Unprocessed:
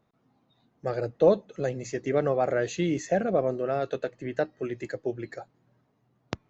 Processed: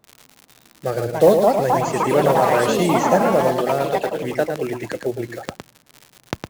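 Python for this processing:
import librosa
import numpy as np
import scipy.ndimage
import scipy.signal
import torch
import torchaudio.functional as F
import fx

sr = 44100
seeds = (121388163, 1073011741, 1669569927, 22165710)

y = fx.block_float(x, sr, bits=5)
y = fx.echo_pitch(y, sr, ms=464, semitones=4, count=3, db_per_echo=-3.0)
y = fx.wow_flutter(y, sr, seeds[0], rate_hz=2.1, depth_cents=21.0)
y = fx.dmg_crackle(y, sr, seeds[1], per_s=76.0, level_db=-35.0)
y = y + 10.0 ** (-6.5 / 20.0) * np.pad(y, (int(110 * sr / 1000.0), 0))[:len(y)]
y = y * 10.0 ** (6.5 / 20.0)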